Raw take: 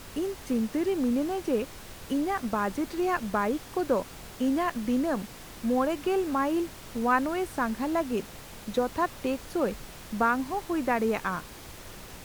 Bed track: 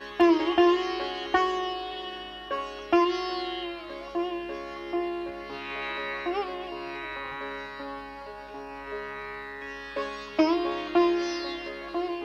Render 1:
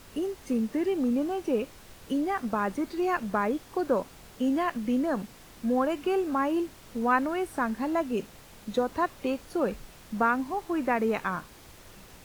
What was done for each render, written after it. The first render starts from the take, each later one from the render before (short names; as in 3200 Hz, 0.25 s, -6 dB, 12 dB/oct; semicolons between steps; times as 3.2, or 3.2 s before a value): noise print and reduce 6 dB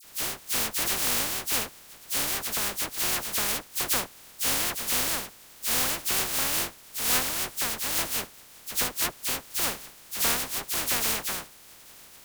spectral contrast lowered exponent 0.13; dispersion lows, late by 42 ms, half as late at 2300 Hz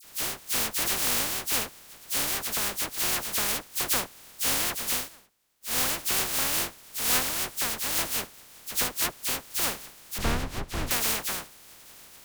4.91–5.79 dip -22.5 dB, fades 0.18 s; 10.18–10.91 RIAA curve playback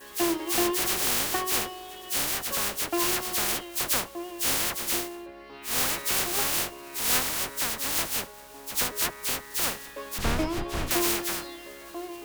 add bed track -7.5 dB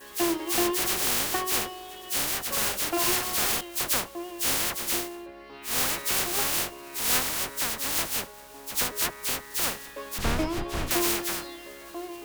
2.48–3.61 doubler 42 ms -3.5 dB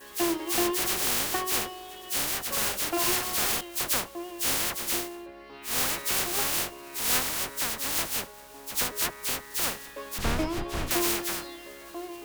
gain -1 dB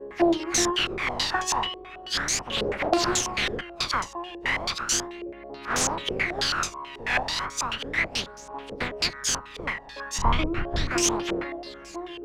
phaser 0.35 Hz, delay 1.2 ms, feedback 54%; stepped low-pass 9.2 Hz 470–6400 Hz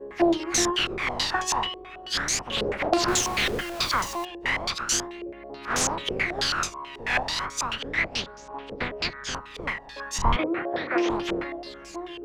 3.08–4.25 zero-crossing step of -31.5 dBFS; 7.79–9.34 LPF 7500 Hz -> 3300 Hz; 10.36–11.1 speaker cabinet 290–3300 Hz, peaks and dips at 340 Hz +4 dB, 520 Hz +9 dB, 760 Hz +5 dB, 1900 Hz +4 dB, 2900 Hz -6 dB